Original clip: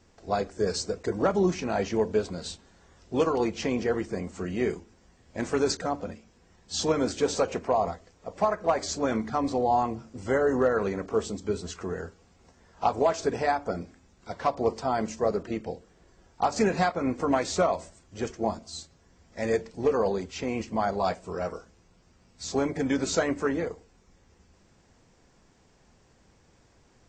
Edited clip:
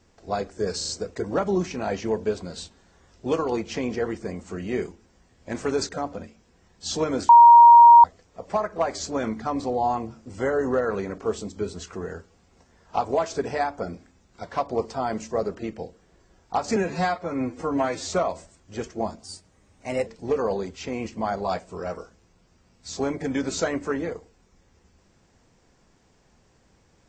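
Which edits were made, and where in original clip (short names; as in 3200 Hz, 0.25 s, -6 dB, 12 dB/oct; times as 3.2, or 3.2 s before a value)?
0.77 stutter 0.04 s, 4 plays
7.17–7.92 bleep 942 Hz -6.5 dBFS
16.64–17.53 stretch 1.5×
18.67–19.62 speed 114%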